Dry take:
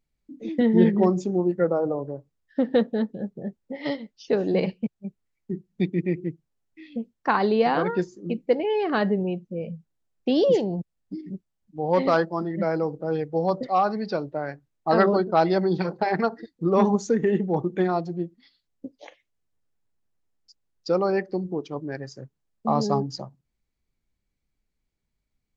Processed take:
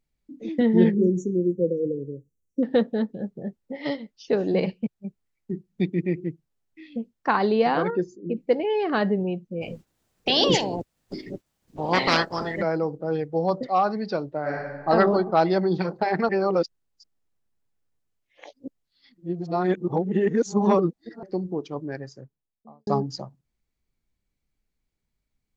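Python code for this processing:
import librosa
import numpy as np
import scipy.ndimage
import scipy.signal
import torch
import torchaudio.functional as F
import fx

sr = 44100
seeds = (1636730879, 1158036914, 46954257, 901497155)

y = fx.brickwall_bandstop(x, sr, low_hz=540.0, high_hz=5600.0, at=(0.94, 2.63))
y = fx.envelope_sharpen(y, sr, power=1.5, at=(7.9, 8.37))
y = fx.spec_clip(y, sr, under_db=26, at=(9.61, 12.61), fade=0.02)
y = fx.reverb_throw(y, sr, start_s=14.41, length_s=0.47, rt60_s=1.5, drr_db=-5.0)
y = fx.studio_fade_out(y, sr, start_s=21.81, length_s=1.06)
y = fx.edit(y, sr, fx.reverse_span(start_s=16.29, length_s=4.94), tone=tone)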